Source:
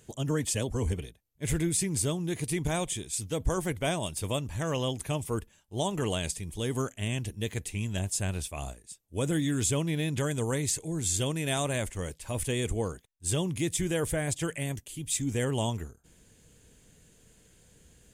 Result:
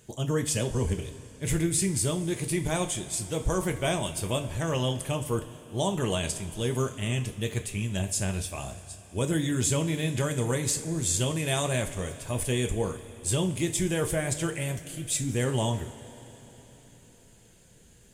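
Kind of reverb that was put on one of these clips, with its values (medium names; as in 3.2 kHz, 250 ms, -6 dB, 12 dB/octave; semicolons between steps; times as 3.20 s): two-slope reverb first 0.31 s, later 4.2 s, from -18 dB, DRR 5 dB; trim +1 dB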